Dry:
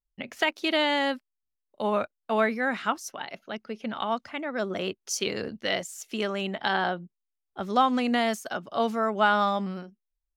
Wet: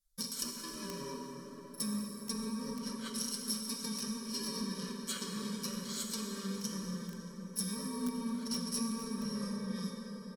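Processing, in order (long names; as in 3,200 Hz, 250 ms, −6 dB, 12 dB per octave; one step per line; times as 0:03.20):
samples in bit-reversed order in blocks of 64 samples
treble cut that deepens with the level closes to 1,500 Hz, closed at −24.5 dBFS
flanger 1.3 Hz, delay 6.2 ms, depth 2.7 ms, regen −53%
comb filter 5.2 ms, depth 84%
downward compressor 4 to 1, threshold −41 dBFS, peak gain reduction 13.5 dB
in parallel at −2 dB: brickwall limiter −42 dBFS, peak gain reduction 14.5 dB
on the sum: high shelf with overshoot 2,200 Hz +9.5 dB, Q 1.5
phaser with its sweep stopped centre 540 Hz, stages 8
on a send: delay with a band-pass on its return 186 ms, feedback 82%, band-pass 440 Hz, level −10 dB
on the sum: dense smooth reverb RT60 4.9 s, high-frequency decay 0.55×, DRR 0.5 dB
feedback echo at a low word length 478 ms, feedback 80%, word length 5 bits, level −4.5 dB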